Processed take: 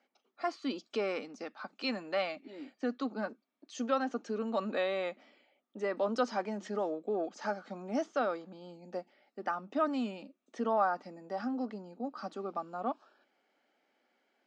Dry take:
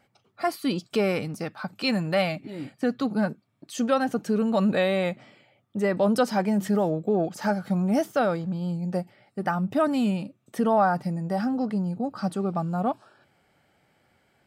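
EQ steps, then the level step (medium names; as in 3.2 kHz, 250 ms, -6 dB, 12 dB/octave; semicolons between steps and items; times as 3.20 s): Chebyshev band-pass 240–6700 Hz, order 4; dynamic bell 1.2 kHz, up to +6 dB, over -46 dBFS, Q 3.4; -8.5 dB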